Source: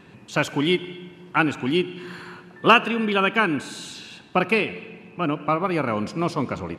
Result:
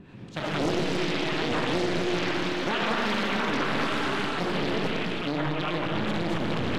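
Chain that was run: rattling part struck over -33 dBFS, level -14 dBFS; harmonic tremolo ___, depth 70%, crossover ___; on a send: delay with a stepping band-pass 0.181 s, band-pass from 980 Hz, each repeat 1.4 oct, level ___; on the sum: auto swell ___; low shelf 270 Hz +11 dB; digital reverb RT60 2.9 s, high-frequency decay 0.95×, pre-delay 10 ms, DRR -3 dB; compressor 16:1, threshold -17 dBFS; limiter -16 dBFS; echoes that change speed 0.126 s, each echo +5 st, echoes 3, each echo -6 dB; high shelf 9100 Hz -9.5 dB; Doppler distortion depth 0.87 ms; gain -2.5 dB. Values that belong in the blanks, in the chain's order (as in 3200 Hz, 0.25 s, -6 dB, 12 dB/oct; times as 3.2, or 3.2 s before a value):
4.5 Hz, 670 Hz, -1 dB, 0.136 s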